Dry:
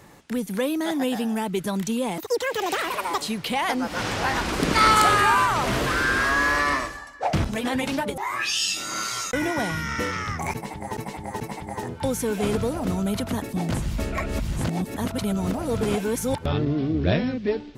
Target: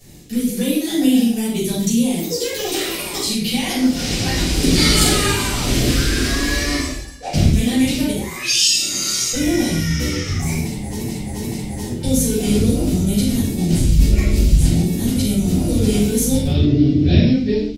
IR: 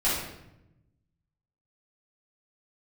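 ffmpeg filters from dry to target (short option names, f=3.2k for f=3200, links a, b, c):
-filter_complex "[0:a]firequalizer=gain_entry='entry(240,0);entry(930,-20);entry(1400,-17);entry(2200,-6);entry(3900,2);entry(6600,5)':delay=0.05:min_phase=1[a];[1:a]atrim=start_sample=2205,afade=t=out:st=0.24:d=0.01,atrim=end_sample=11025[b];[a][b]afir=irnorm=-1:irlink=0,volume=-2.5dB"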